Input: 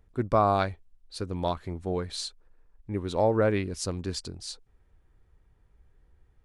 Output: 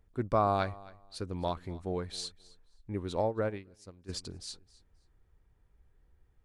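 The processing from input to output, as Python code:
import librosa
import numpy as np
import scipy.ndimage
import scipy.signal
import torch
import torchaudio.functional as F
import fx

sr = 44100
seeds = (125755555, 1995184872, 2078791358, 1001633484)

y = fx.echo_feedback(x, sr, ms=265, feedback_pct=20, wet_db=-21.0)
y = fx.upward_expand(y, sr, threshold_db=-32.0, expansion=2.5, at=(3.21, 4.08), fade=0.02)
y = y * 10.0 ** (-4.5 / 20.0)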